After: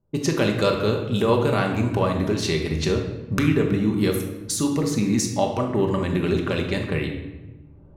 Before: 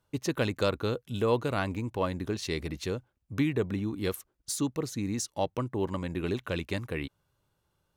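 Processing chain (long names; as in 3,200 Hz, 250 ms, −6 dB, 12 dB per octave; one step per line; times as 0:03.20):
camcorder AGC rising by 21 dB per second
low-pass that shuts in the quiet parts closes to 430 Hz, open at −28 dBFS
rectangular room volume 600 cubic metres, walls mixed, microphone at 1.2 metres
level +5 dB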